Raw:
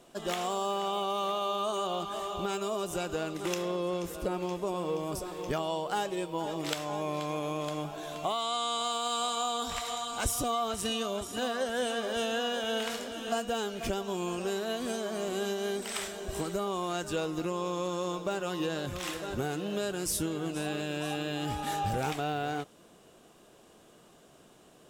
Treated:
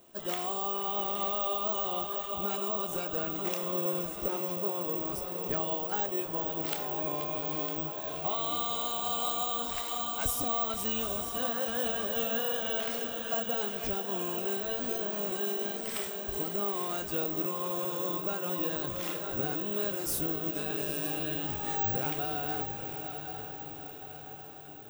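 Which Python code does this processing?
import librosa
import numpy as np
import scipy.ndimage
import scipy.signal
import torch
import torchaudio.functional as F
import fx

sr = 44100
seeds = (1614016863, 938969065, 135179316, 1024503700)

p1 = fx.chorus_voices(x, sr, voices=4, hz=0.31, base_ms=27, depth_ms=2.6, mix_pct=25)
p2 = p1 + fx.echo_diffused(p1, sr, ms=864, feedback_pct=56, wet_db=-7, dry=0)
p3 = (np.kron(p2[::2], np.eye(2)[0]) * 2)[:len(p2)]
y = F.gain(torch.from_numpy(p3), -2.0).numpy()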